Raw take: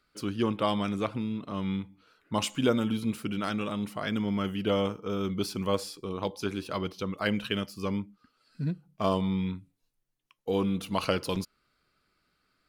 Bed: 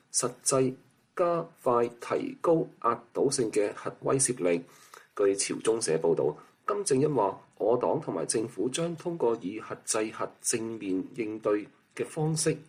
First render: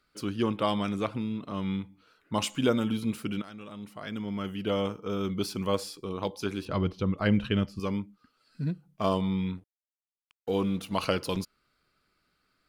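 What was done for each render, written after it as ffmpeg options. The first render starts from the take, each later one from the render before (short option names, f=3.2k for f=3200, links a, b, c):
-filter_complex "[0:a]asettb=1/sr,asplit=3[a][b][c];[a]atrim=end=6.654[d];[b]atrim=start=6.65:end=7.8,asetpts=PTS-STARTPTS,afade=t=in:d=0.004:c=qsin,afade=t=out:st=1.146:d=0.004:c=qsin,aemphasis=mode=reproduction:type=bsi[e];[c]atrim=start=7.796[f];[d][e]acrossfade=d=0.004:c1=hsin:c2=qsin[g];[g][f]acrossfade=d=0.004:c1=qsin:c2=hsin,asettb=1/sr,asplit=3[h][i][j];[h]atrim=end=9.574[k];[i]atrim=start=9.57:end=10.96,asetpts=PTS-STARTPTS,afade=t=in:d=0.004:c=qsin,afade=t=out:st=1.386:d=0.004:c=qsin,aeval=exprs='sgn(val(0))*max(abs(val(0))-0.002,0)':c=same[l];[j]atrim=start=10.956[m];[k][l]acrossfade=d=0.004:c1=hsin:c2=qsin[n];[n][m]acrossfade=d=0.004:c1=qsin:c2=hsin,asplit=2[o][p];[o]atrim=end=3.42,asetpts=PTS-STARTPTS,afade=t=out:st=3.416:d=0.004:c=hsin:silence=0.149624[q];[p]atrim=start=3.42,asetpts=PTS-STARTPTS,afade=t=in:d=1.69:silence=0.149624[r];[q][r]concat=n=2:v=0:a=1"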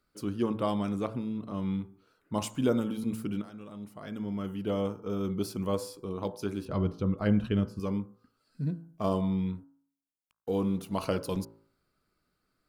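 -af "equalizer=f=2.8k:t=o:w=2.3:g=-9.5,bandreject=f=55.39:t=h:w=4,bandreject=f=110.78:t=h:w=4,bandreject=f=166.17:t=h:w=4,bandreject=f=221.56:t=h:w=4,bandreject=f=276.95:t=h:w=4,bandreject=f=332.34:t=h:w=4,bandreject=f=387.73:t=h:w=4,bandreject=f=443.12:t=h:w=4,bandreject=f=498.51:t=h:w=4,bandreject=f=553.9:t=h:w=4,bandreject=f=609.29:t=h:w=4,bandreject=f=664.68:t=h:w=4,bandreject=f=720.07:t=h:w=4,bandreject=f=775.46:t=h:w=4,bandreject=f=830.85:t=h:w=4,bandreject=f=886.24:t=h:w=4,bandreject=f=941.63:t=h:w=4,bandreject=f=997.02:t=h:w=4,bandreject=f=1.05241k:t=h:w=4,bandreject=f=1.1078k:t=h:w=4,bandreject=f=1.16319k:t=h:w=4,bandreject=f=1.21858k:t=h:w=4,bandreject=f=1.27397k:t=h:w=4,bandreject=f=1.32936k:t=h:w=4,bandreject=f=1.38475k:t=h:w=4,bandreject=f=1.44014k:t=h:w=4,bandreject=f=1.49553k:t=h:w=4,bandreject=f=1.55092k:t=h:w=4,bandreject=f=1.60631k:t=h:w=4,bandreject=f=1.6617k:t=h:w=4"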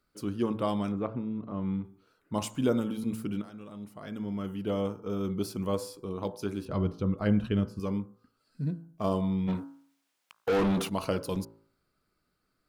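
-filter_complex "[0:a]asplit=3[a][b][c];[a]afade=t=out:st=0.91:d=0.02[d];[b]lowpass=2k,afade=t=in:st=0.91:d=0.02,afade=t=out:st=1.83:d=0.02[e];[c]afade=t=in:st=1.83:d=0.02[f];[d][e][f]amix=inputs=3:normalize=0,asplit=3[g][h][i];[g]afade=t=out:st=9.47:d=0.02[j];[h]asplit=2[k][l];[l]highpass=f=720:p=1,volume=28dB,asoftclip=type=tanh:threshold=-19dB[m];[k][m]amix=inputs=2:normalize=0,lowpass=f=3.6k:p=1,volume=-6dB,afade=t=in:st=9.47:d=0.02,afade=t=out:st=10.88:d=0.02[n];[i]afade=t=in:st=10.88:d=0.02[o];[j][n][o]amix=inputs=3:normalize=0"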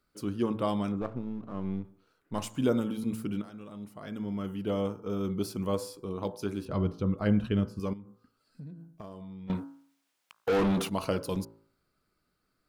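-filter_complex "[0:a]asettb=1/sr,asplit=3[a][b][c];[a]atrim=end=1.014[d];[b]atrim=start=1.01:end=2.54,asetpts=PTS-STARTPTS,afade=t=in:d=0.004:c=qsin,afade=t=out:st=1.526:d=0.004:c=qsin,aeval=exprs='if(lt(val(0),0),0.447*val(0),val(0))':c=same[e];[c]atrim=start=2.536[f];[d][e]acrossfade=d=0.004:c1=hsin:c2=qsin[g];[g][f]acrossfade=d=0.004:c1=qsin:c2=hsin,asettb=1/sr,asplit=3[h][i][j];[h]atrim=end=7.934[k];[i]atrim=start=7.93:end=9.5,asetpts=PTS-STARTPTS,afade=t=in:d=0.004:c=qsin,afade=t=out:st=1.566:d=0.004:c=qsin,acompressor=threshold=-40dB:ratio=12:attack=3.2:release=140:knee=1:detection=peak[l];[j]atrim=start=9.496[m];[k][l]acrossfade=d=0.004:c1=hsin:c2=qsin[n];[n][m]acrossfade=d=0.004:c1=qsin:c2=hsin"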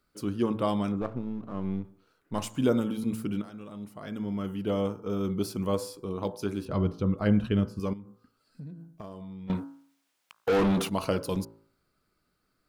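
-af "volume=2dB"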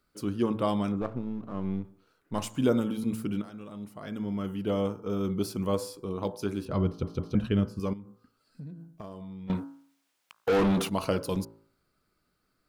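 -filter_complex "[0:a]asplit=4[a][b][c][d];[a]atrim=end=7.032[e];[b]atrim=start=6.868:end=7.032[f];[c]atrim=start=6.868:end=7.032[g];[d]atrim=start=7.348[h];[e][f]acrossfade=d=0.004:c1=hsin:c2=hsin[i];[i][g]acrossfade=d=0.004:c1=hsin:c2=hsin[j];[j][h]acrossfade=d=0.004:c1=hsin:c2=hsin"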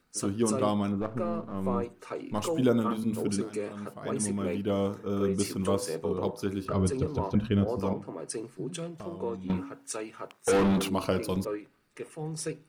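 -filter_complex "[1:a]volume=-7.5dB[a];[0:a][a]amix=inputs=2:normalize=0"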